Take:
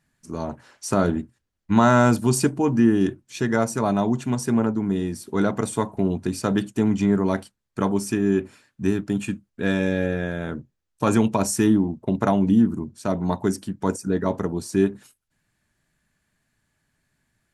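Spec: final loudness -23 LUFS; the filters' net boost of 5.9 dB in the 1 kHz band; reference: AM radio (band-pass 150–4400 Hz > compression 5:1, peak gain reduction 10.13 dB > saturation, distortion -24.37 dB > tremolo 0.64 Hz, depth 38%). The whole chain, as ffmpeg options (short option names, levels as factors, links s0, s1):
-af "highpass=150,lowpass=4400,equalizer=f=1000:t=o:g=7.5,acompressor=threshold=0.112:ratio=5,asoftclip=threshold=0.316,tremolo=f=0.64:d=0.38,volume=1.88"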